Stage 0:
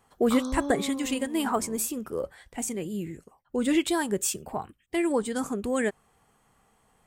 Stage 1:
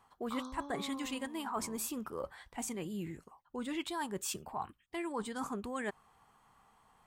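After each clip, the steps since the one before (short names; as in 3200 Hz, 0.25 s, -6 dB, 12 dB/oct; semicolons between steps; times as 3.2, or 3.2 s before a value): graphic EQ 500/1000/4000/8000 Hz -4/+10/+4/-3 dB; reverse; compressor 6:1, threshold -30 dBFS, peak gain reduction 14 dB; reverse; gain -5 dB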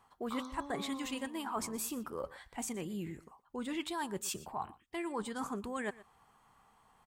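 echo 0.12 s -19 dB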